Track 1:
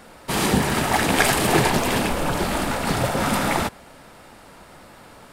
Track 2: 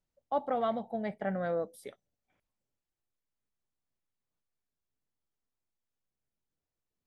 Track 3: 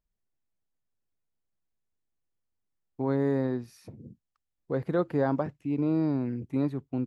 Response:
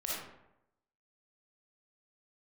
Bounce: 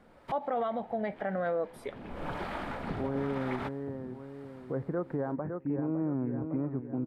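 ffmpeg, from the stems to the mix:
-filter_complex "[0:a]bandreject=f=2.7k:w=21,acrossover=split=4300[a][b];[b]acompressor=threshold=-43dB:ratio=4:attack=1:release=60[c];[a][c]amix=inputs=2:normalize=0,acrossover=split=550[d][e];[d]aeval=exprs='val(0)*(1-0.5/2+0.5/2*cos(2*PI*1*n/s))':c=same[f];[e]aeval=exprs='val(0)*(1-0.5/2-0.5/2*cos(2*PI*1*n/s))':c=same[g];[f][g]amix=inputs=2:normalize=0,volume=-17dB[h];[1:a]lowshelf=f=220:g=-10.5,volume=1.5dB,asplit=2[i][j];[2:a]lowpass=f=1.8k:w=0.5412,lowpass=f=1.8k:w=1.3066,volume=-8dB,asplit=2[k][l];[l]volume=-10.5dB[m];[j]apad=whole_len=234613[n];[h][n]sidechaincompress=threshold=-57dB:ratio=6:attack=16:release=302[o];[m]aecho=0:1:558|1116|1674|2232|2790|3348:1|0.45|0.202|0.0911|0.041|0.0185[p];[o][i][k][p]amix=inputs=4:normalize=0,bass=f=250:g=0,treble=f=4k:g=-13,acontrast=69,alimiter=limit=-23.5dB:level=0:latency=1:release=90"

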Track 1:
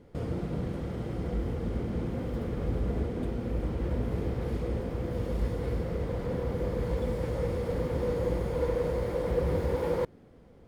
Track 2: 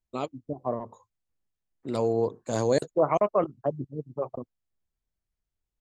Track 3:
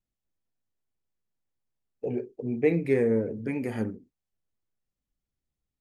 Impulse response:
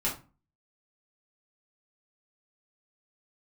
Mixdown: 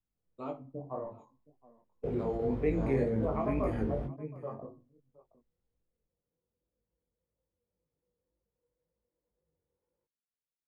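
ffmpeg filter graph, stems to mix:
-filter_complex "[0:a]flanger=delay=2.9:depth=4.4:regen=61:speed=1.2:shape=triangular,volume=1.5dB[a];[1:a]acrossover=split=2500[b][c];[c]acompressor=threshold=-55dB:ratio=4:attack=1:release=60[d];[b][d]amix=inputs=2:normalize=0,adelay=250,volume=-7.5dB,asplit=3[e][f][g];[f]volume=-9dB[h];[g]volume=-20dB[i];[2:a]volume=0.5dB,asplit=3[j][k][l];[k]volume=-20dB[m];[l]apad=whole_len=470966[n];[a][n]sidechaingate=range=-51dB:threshold=-47dB:ratio=16:detection=peak[o];[3:a]atrim=start_sample=2205[p];[h][p]afir=irnorm=-1:irlink=0[q];[i][m]amix=inputs=2:normalize=0,aecho=0:1:720:1[r];[o][e][j][q][r]amix=inputs=5:normalize=0,highshelf=f=3.3k:g=-11,flanger=delay=19:depth=3.9:speed=1.9,acrossover=split=180|3000[s][t][u];[t]acompressor=threshold=-31dB:ratio=2[v];[s][v][u]amix=inputs=3:normalize=0"

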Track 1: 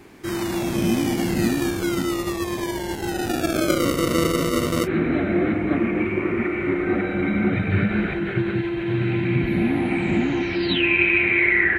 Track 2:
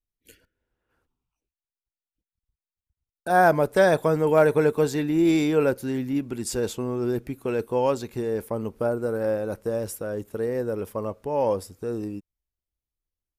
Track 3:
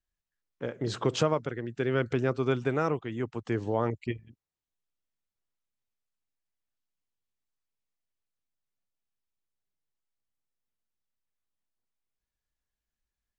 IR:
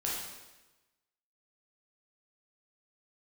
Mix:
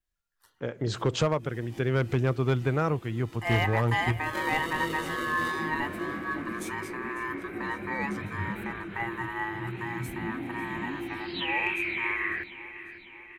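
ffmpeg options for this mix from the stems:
-filter_complex "[0:a]adynamicequalizer=threshold=0.0141:dfrequency=3300:dqfactor=1.7:tfrequency=3300:tqfactor=1.7:attack=5:release=100:ratio=0.375:range=3.5:mode=boostabove:tftype=bell,flanger=delay=17.5:depth=7.4:speed=2.6,adelay=650,volume=-12dB,asplit=2[a][b];[b]volume=-14dB[c];[1:a]flanger=delay=3.7:depth=8.3:regen=72:speed=0.36:shape=triangular,aeval=exprs='val(0)*sin(2*PI*1400*n/s)':c=same,adelay=150,volume=-3dB,asplit=2[d][e];[e]volume=-17dB[f];[2:a]asubboost=boost=4.5:cutoff=140,volume=1.5dB,asplit=2[g][h];[h]apad=whole_len=548409[i];[a][i]sidechaincompress=threshold=-44dB:ratio=8:attack=5.5:release=120[j];[c][f]amix=inputs=2:normalize=0,aecho=0:1:548|1096|1644|2192|2740|3288|3836|4384:1|0.56|0.314|0.176|0.0983|0.0551|0.0308|0.0173[k];[j][d][g][k]amix=inputs=4:normalize=0,adynamicequalizer=threshold=0.001:dfrequency=5600:dqfactor=3.1:tfrequency=5600:tqfactor=3.1:attack=5:release=100:ratio=0.375:range=2.5:mode=cutabove:tftype=bell,volume=17dB,asoftclip=hard,volume=-17dB"

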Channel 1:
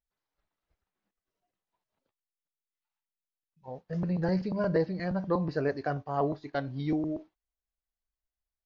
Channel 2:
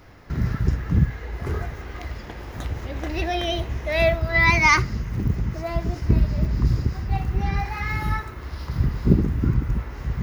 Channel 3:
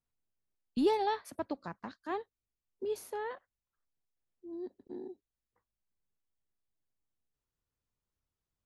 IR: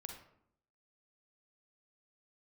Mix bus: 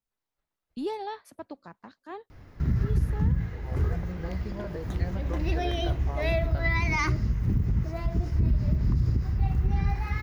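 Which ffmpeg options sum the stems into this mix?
-filter_complex "[0:a]acompressor=threshold=-32dB:ratio=6,volume=-3dB[a];[1:a]lowshelf=f=300:g=10.5,bandreject=f=56.23:t=h:w=4,bandreject=f=112.46:t=h:w=4,bandreject=f=168.69:t=h:w=4,bandreject=f=224.92:t=h:w=4,bandreject=f=281.15:t=h:w=4,bandreject=f=337.38:t=h:w=4,bandreject=f=393.61:t=h:w=4,bandreject=f=449.84:t=h:w=4,bandreject=f=506.07:t=h:w=4,bandreject=f=562.3:t=h:w=4,bandreject=f=618.53:t=h:w=4,bandreject=f=674.76:t=h:w=4,bandreject=f=730.99:t=h:w=4,adelay=2300,volume=-8dB[b];[2:a]volume=-4dB[c];[a][b][c]amix=inputs=3:normalize=0,alimiter=limit=-16dB:level=0:latency=1:release=71"

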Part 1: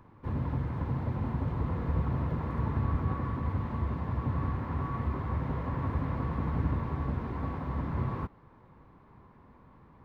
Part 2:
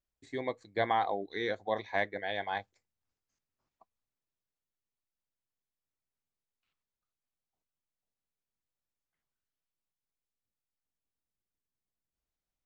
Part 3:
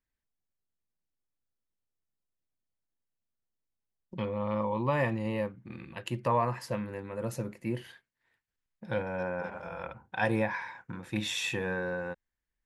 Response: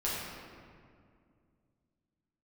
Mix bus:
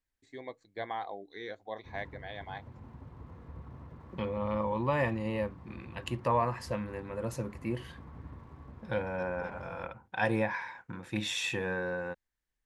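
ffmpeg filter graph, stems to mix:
-filter_complex "[0:a]aeval=exprs='sgn(val(0))*max(abs(val(0))-0.00237,0)':c=same,adelay=1600,volume=-16dB[a];[1:a]bandreject=f=144.2:t=h:w=4,bandreject=f=288.4:t=h:w=4,volume=-8dB[b];[2:a]lowpass=11k,volume=-0.5dB[c];[a][b][c]amix=inputs=3:normalize=0,equalizer=f=160:w=1.5:g=-2"

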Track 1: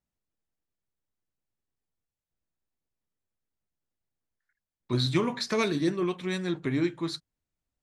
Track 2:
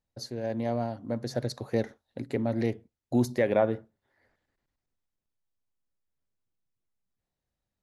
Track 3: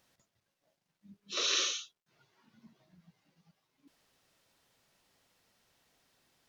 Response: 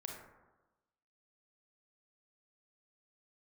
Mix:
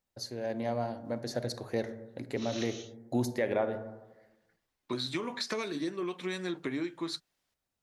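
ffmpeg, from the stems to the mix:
-filter_complex "[0:a]highpass=250,acompressor=threshold=-32dB:ratio=12,volume=1.5dB[a];[1:a]volume=-1.5dB,asplit=3[b][c][d];[c]volume=-7dB[e];[2:a]adelay=1050,volume=-9dB[f];[d]apad=whole_len=332460[g];[f][g]sidechaincompress=threshold=-29dB:ratio=8:attack=16:release=159[h];[b][h]amix=inputs=2:normalize=0,lowshelf=f=370:g=-10,alimiter=limit=-23.5dB:level=0:latency=1:release=413,volume=0dB[i];[3:a]atrim=start_sample=2205[j];[e][j]afir=irnorm=-1:irlink=0[k];[a][i][k]amix=inputs=3:normalize=0"

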